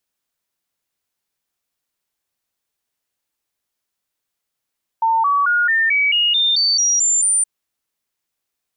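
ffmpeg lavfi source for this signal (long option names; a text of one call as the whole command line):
ffmpeg -f lavfi -i "aevalsrc='0.224*clip(min(mod(t,0.22),0.22-mod(t,0.22))/0.005,0,1)*sin(2*PI*903*pow(2,floor(t/0.22)/3)*mod(t,0.22))':duration=2.42:sample_rate=44100" out.wav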